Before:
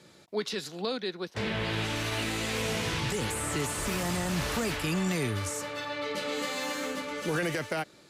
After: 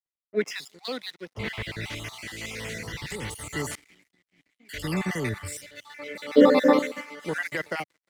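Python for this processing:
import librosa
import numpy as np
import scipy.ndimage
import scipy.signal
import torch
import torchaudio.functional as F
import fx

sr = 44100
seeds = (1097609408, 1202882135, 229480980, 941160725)

y = fx.spec_dropout(x, sr, seeds[0], share_pct=38)
y = fx.vowel_filter(y, sr, vowel='i', at=(3.75, 4.69))
y = fx.rider(y, sr, range_db=4, speed_s=2.0)
y = fx.graphic_eq(y, sr, hz=(250, 500, 1000, 2000, 4000, 8000), db=(12, 9, 6, -4, 5, -10), at=(6.35, 6.79))
y = fx.echo_feedback(y, sr, ms=357, feedback_pct=31, wet_db=-24)
y = np.sign(y) * np.maximum(np.abs(y) - 10.0 ** (-48.0 / 20.0), 0.0)
y = fx.peak_eq(y, sr, hz=2000.0, db=10.0, octaves=0.26)
y = fx.band_widen(y, sr, depth_pct=100)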